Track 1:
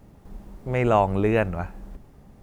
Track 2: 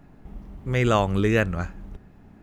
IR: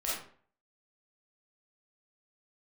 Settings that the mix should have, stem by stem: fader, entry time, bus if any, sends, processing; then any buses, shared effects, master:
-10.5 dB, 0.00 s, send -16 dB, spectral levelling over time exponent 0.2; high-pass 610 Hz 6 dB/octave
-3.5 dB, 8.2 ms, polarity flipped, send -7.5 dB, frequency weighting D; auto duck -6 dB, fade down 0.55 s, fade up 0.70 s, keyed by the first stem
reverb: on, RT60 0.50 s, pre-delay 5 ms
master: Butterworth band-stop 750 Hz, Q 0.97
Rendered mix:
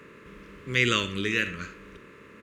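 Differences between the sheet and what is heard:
stem 1 -10.5 dB -> -21.5 dB; reverb return -9.5 dB

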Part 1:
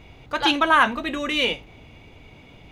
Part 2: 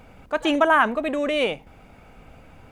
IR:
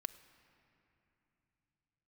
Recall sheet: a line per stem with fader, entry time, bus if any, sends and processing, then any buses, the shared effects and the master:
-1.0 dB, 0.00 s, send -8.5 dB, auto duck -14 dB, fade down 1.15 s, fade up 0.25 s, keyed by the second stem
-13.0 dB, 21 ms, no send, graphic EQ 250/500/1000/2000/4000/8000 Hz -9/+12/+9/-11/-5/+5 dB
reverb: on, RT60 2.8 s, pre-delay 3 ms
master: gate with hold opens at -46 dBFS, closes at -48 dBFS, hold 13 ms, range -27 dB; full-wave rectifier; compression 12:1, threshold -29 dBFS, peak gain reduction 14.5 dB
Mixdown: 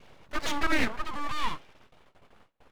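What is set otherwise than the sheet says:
stem 1 -1.0 dB -> -8.5 dB; master: missing compression 12:1, threshold -29 dBFS, peak gain reduction 14.5 dB

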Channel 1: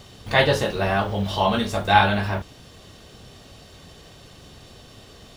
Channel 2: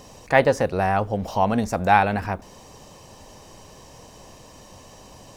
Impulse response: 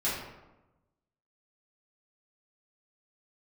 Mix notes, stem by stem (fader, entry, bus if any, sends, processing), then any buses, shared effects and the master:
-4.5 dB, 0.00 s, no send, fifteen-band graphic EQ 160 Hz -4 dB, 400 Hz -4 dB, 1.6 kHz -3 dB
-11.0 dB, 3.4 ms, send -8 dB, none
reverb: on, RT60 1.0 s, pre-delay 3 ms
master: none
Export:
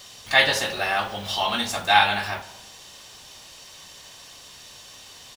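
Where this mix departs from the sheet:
stem 1: missing fifteen-band graphic EQ 160 Hz -4 dB, 400 Hz -4 dB, 1.6 kHz -3 dB; master: extra tilt shelf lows -10 dB, about 920 Hz

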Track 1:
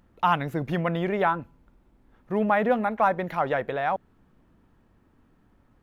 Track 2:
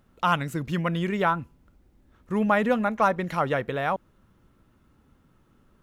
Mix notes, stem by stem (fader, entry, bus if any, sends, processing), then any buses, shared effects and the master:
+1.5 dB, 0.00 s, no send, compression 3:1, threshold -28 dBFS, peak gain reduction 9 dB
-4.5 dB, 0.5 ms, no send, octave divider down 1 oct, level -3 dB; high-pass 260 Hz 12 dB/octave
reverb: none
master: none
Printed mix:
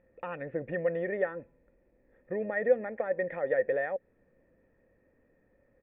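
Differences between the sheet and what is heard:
stem 1 +1.5 dB -> +9.5 dB; master: extra cascade formant filter e

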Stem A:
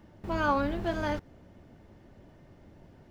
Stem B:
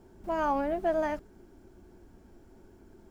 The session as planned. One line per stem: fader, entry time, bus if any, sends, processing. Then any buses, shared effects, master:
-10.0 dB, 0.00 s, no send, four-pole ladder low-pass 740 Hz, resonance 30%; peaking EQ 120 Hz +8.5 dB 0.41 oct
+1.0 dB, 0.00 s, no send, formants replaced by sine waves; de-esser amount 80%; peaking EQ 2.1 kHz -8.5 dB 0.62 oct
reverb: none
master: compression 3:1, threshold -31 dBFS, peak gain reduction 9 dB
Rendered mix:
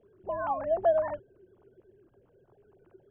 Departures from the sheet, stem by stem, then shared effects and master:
stem B: polarity flipped; master: missing compression 3:1, threshold -31 dBFS, peak gain reduction 9 dB

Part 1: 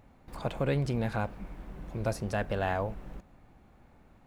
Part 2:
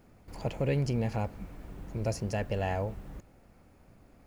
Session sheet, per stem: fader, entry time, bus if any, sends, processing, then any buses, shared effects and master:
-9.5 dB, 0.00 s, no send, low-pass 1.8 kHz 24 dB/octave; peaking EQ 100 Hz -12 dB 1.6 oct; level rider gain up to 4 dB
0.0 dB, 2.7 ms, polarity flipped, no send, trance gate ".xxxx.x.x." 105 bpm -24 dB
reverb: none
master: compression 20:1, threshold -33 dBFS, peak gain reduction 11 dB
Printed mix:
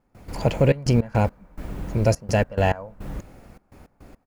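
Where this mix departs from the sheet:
stem 2 0.0 dB -> +12.0 dB; master: missing compression 20:1, threshold -33 dBFS, peak gain reduction 11 dB

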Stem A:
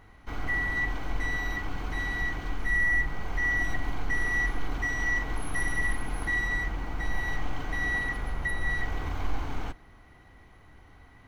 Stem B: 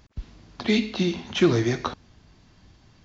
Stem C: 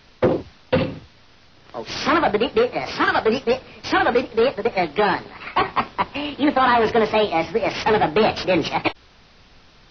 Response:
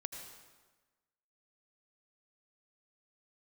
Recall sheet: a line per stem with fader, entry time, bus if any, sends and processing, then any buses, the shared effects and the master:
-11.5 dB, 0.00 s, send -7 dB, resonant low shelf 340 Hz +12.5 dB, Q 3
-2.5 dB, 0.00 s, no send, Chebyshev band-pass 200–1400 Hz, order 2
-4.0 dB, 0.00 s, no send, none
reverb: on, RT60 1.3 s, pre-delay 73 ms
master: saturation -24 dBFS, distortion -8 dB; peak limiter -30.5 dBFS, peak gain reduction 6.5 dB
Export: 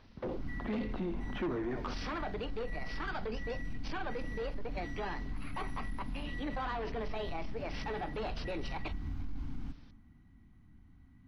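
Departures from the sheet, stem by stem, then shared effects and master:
stem A -11.5 dB -> -20.5 dB; stem C -4.0 dB -> -15.5 dB

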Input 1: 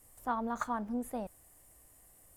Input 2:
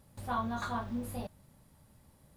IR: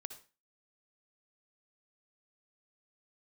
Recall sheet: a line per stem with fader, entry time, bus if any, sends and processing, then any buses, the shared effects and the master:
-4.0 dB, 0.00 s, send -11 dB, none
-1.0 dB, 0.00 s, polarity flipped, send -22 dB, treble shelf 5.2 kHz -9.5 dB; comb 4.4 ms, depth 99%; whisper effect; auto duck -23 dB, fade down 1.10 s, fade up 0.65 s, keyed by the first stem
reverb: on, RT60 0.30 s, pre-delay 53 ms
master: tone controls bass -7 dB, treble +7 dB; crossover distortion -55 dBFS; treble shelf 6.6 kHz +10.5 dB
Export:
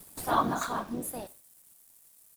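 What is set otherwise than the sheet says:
stem 2 -1.0 dB -> +10.0 dB; reverb return +6.5 dB

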